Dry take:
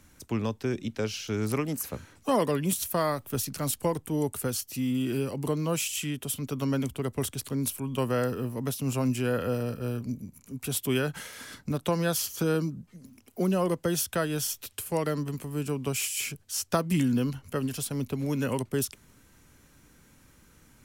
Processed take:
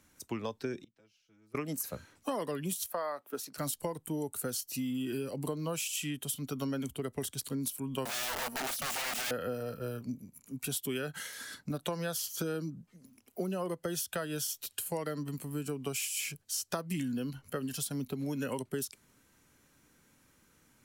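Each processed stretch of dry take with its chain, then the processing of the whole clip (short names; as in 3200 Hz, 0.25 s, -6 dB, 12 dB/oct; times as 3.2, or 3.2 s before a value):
0.84–1.55 tone controls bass +3 dB, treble -3 dB + comb 6.1 ms, depth 94% + flipped gate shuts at -30 dBFS, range -30 dB
2.86–3.58 HPF 340 Hz + high shelf 3100 Hz -11.5 dB
8.05–9.31 comb 4.4 ms, depth 70% + wrapped overs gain 28 dB
whole clip: spectral noise reduction 7 dB; low shelf 110 Hz -10.5 dB; compressor 6:1, threshold -33 dBFS; gain +1 dB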